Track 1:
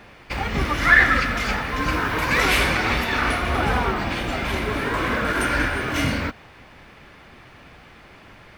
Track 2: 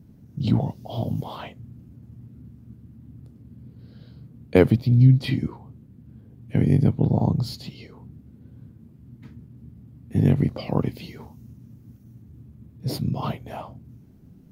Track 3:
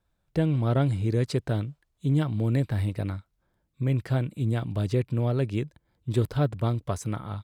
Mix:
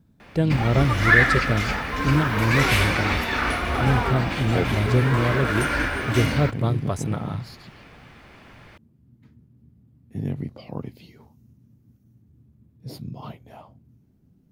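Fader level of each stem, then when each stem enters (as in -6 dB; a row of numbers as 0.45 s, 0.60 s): -2.0 dB, -9.5 dB, +3.0 dB; 0.20 s, 0.00 s, 0.00 s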